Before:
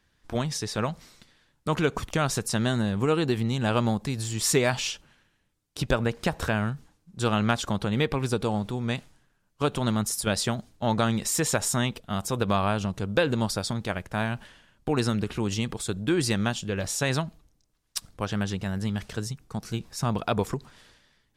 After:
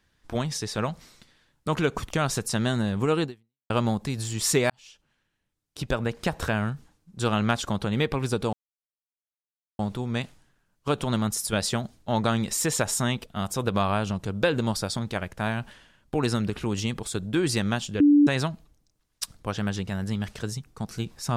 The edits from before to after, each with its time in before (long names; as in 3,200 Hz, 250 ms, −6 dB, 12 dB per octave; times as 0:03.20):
0:03.24–0:03.70: fade out exponential
0:04.70–0:06.35: fade in
0:08.53: splice in silence 1.26 s
0:16.74–0:17.01: beep over 291 Hz −13 dBFS